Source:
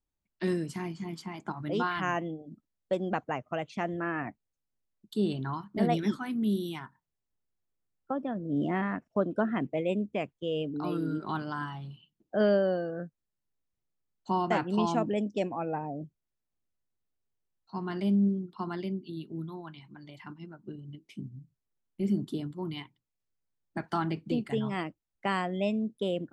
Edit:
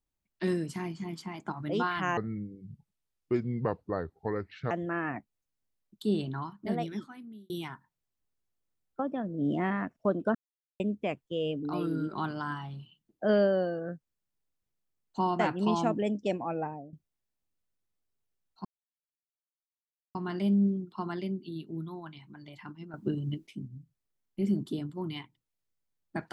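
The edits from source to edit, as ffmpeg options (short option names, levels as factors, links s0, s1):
-filter_complex "[0:a]asplit=10[s0][s1][s2][s3][s4][s5][s6][s7][s8][s9];[s0]atrim=end=2.174[s10];[s1]atrim=start=2.17:end=3.82,asetpts=PTS-STARTPTS,asetrate=28665,aresample=44100,atrim=end_sample=111946,asetpts=PTS-STARTPTS[s11];[s2]atrim=start=3.816:end=6.61,asetpts=PTS-STARTPTS,afade=t=out:st=1.414:d=1.38[s12];[s3]atrim=start=6.61:end=9.46,asetpts=PTS-STARTPTS,afade=t=in:d=0.004:c=hsin,afade=t=out:st=2.846:d=0.004:c=hsin[s13];[s4]atrim=start=9.46:end=9.91,asetpts=PTS-STARTPTS,volume=0[s14];[s5]atrim=start=9.91:end=16.04,asetpts=PTS-STARTPTS,afade=t=in:d=0.004:c=hsin,afade=t=out:st=5.8:d=0.33:silence=0.125893[s15];[s6]atrim=start=16.04:end=17.76,asetpts=PTS-STARTPTS,afade=t=in:d=0.004:c=hsin:silence=0.125893,afade=t=out:st=1.716:d=0.004:c=hsin,apad=pad_dur=1.5[s16];[s7]atrim=start=17.76:end=20.552,asetpts=PTS-STARTPTS,afade=t=in:d=0.004:c=hsin[s17];[s8]atrim=start=20.548:end=21.082,asetpts=PTS-STARTPTS,volume=3.55[s18];[s9]atrim=start=21.078[s19];[s10][s11]acrossfade=d=0.004:c1=hsin:c2=hsin[s20];[s12][s13][s14][s15][s16][s17]concat=n=6:v=0:a=1[s21];[s20][s21]acrossfade=d=0.004:c1=hsin:c2=hsin[s22];[s22][s18]acrossfade=d=0.004:c1=hsin:c2=hsin[s23];[s23][s19]acrossfade=d=0.004:c1=hsin:c2=hsin"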